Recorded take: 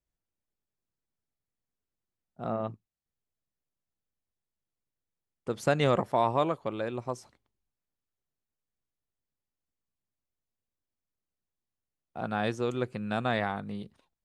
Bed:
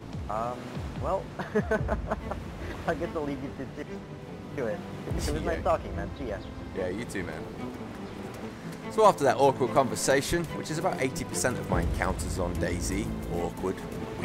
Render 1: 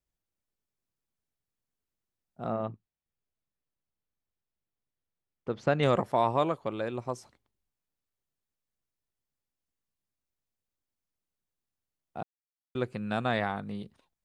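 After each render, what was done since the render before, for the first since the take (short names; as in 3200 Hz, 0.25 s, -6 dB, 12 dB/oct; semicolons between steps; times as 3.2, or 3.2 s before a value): 2.65–5.83 air absorption 180 m; 12.23–12.75 mute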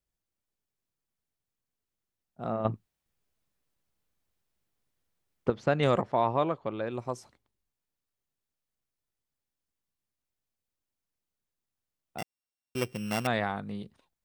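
2.65–5.5 gain +9 dB; 6.01–6.91 air absorption 140 m; 12.18–13.27 sample sorter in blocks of 16 samples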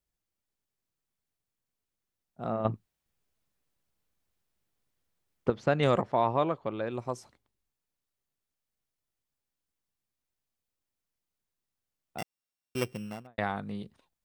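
12.8–13.38 studio fade out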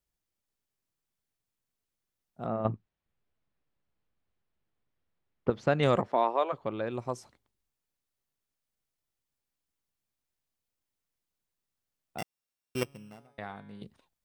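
2.46–5.51 air absorption 250 m; 6.07–6.52 HPF 170 Hz -> 500 Hz 24 dB/oct; 12.83–13.82 resonator 140 Hz, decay 1.2 s, mix 70%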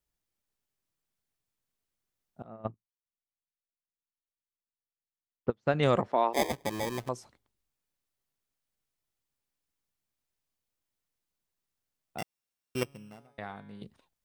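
2.42–5.74 upward expander 2.5:1, over -39 dBFS; 6.33–7.09 sample-rate reducer 1400 Hz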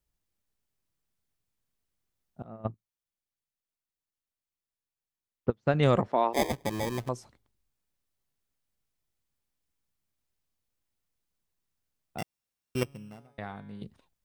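low shelf 210 Hz +7 dB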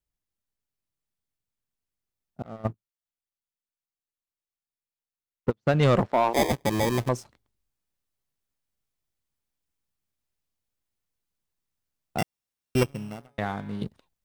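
vocal rider within 3 dB 2 s; sample leveller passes 2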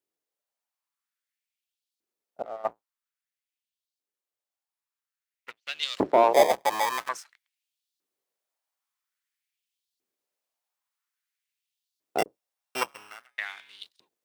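octaver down 1 oct, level +3 dB; LFO high-pass saw up 0.5 Hz 330–4300 Hz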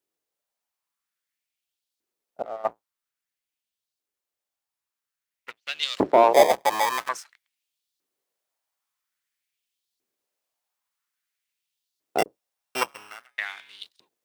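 gain +3 dB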